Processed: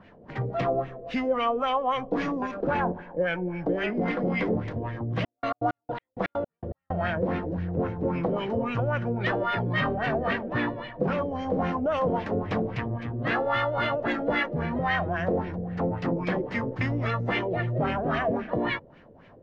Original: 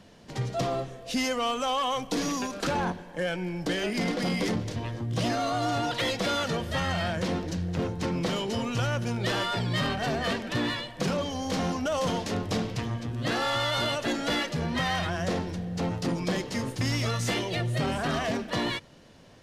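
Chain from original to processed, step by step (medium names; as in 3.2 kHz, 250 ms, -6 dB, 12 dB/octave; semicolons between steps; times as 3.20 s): LFO low-pass sine 3.7 Hz 470–2300 Hz; 5.19–6.92 s: trance gate "x..x.x.." 163 bpm -60 dB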